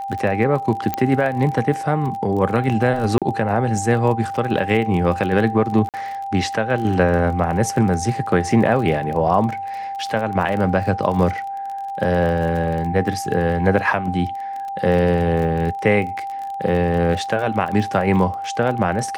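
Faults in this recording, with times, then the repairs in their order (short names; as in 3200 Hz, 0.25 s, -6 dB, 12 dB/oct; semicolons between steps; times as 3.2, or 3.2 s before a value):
crackle 29/s -26 dBFS
tone 790 Hz -25 dBFS
0.94 pop -8 dBFS
3.18–3.22 gap 37 ms
5.89–5.94 gap 48 ms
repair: de-click; notch 790 Hz, Q 30; interpolate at 3.18, 37 ms; interpolate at 5.89, 48 ms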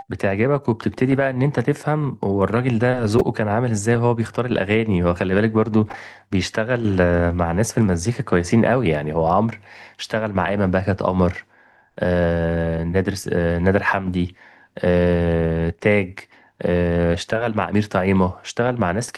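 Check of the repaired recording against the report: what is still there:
none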